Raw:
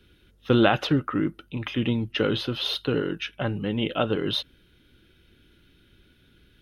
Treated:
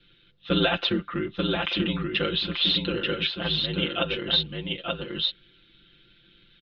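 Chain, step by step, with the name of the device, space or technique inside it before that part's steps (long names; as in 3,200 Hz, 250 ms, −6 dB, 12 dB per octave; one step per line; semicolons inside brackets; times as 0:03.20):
drawn EQ curve 940 Hz 0 dB, 3,900 Hz +11 dB, 8,900 Hz −27 dB
single-tap delay 886 ms −3.5 dB
ring-modulated robot voice (ring modulation 49 Hz; comb filter 5.8 ms, depth 85%)
level −4 dB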